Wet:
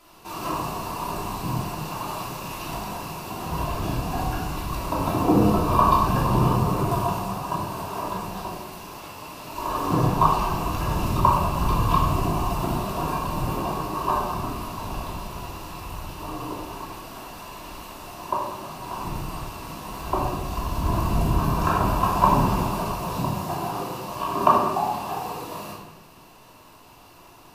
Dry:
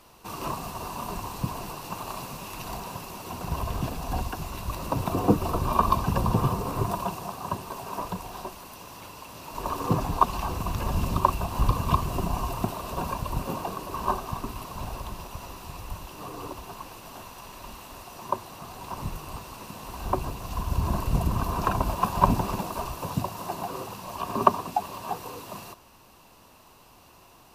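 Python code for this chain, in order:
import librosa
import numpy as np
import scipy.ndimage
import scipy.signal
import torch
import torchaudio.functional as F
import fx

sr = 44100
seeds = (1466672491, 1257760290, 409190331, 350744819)

y = fx.low_shelf(x, sr, hz=140.0, db=-7.0)
y = fx.room_shoebox(y, sr, seeds[0], volume_m3=570.0, walls='mixed', distance_m=3.0)
y = F.gain(torch.from_numpy(y), -2.5).numpy()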